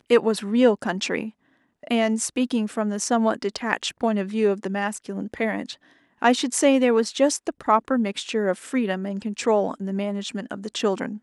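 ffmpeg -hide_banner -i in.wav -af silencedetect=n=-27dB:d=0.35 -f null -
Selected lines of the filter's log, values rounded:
silence_start: 1.28
silence_end: 1.87 | silence_duration: 0.59
silence_start: 5.72
silence_end: 6.22 | silence_duration: 0.51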